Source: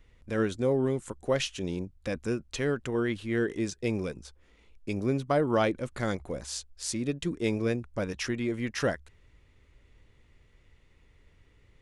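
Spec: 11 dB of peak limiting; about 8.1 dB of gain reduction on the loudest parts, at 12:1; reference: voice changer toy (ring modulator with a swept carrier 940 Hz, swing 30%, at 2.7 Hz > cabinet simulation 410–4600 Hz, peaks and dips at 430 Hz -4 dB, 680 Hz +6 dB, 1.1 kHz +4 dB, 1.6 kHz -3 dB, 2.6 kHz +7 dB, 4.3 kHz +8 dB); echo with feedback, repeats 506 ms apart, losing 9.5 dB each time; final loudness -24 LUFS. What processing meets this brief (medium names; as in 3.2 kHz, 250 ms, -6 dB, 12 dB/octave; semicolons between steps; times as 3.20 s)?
compression 12:1, threshold -29 dBFS; peak limiter -28 dBFS; feedback delay 506 ms, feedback 33%, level -9.5 dB; ring modulator with a swept carrier 940 Hz, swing 30%, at 2.7 Hz; cabinet simulation 410–4600 Hz, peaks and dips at 430 Hz -4 dB, 680 Hz +6 dB, 1.1 kHz +4 dB, 1.6 kHz -3 dB, 2.6 kHz +7 dB, 4.3 kHz +8 dB; trim +15 dB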